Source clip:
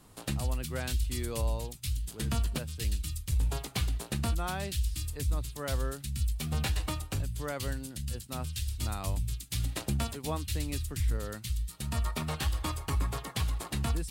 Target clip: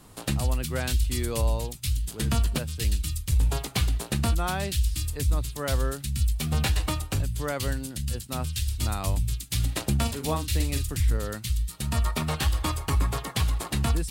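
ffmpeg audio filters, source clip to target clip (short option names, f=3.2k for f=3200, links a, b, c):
-filter_complex "[0:a]asettb=1/sr,asplit=3[a][b][c];[a]atrim=end=10.014[d];[b]atrim=start=10.01:end=10.96,asetpts=PTS-STARTPTS,afade=t=in:d=0.004:c=qsin,afade=t=out:st=0.946:d=0.004:c=qsin,asplit=2[e][f];[f]adelay=43,volume=-7.5dB[g];[e][g]amix=inputs=2:normalize=0,atrim=end_sample=41895[h];[c]atrim=start=10.956[i];[d][h]acrossfade=d=0.004:c1=hsin:c2=qsin[j];[j][i]acrossfade=d=0.004:c1=qsin:c2=hsin,volume=6dB"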